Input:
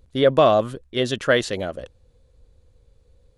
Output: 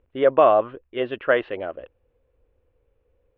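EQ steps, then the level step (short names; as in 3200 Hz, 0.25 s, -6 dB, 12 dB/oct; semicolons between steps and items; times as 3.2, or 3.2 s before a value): elliptic low-pass 2800 Hz, stop band 70 dB; dynamic EQ 940 Hz, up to +6 dB, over -31 dBFS, Q 0.94; resonant low shelf 250 Hz -7 dB, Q 1.5; -4.0 dB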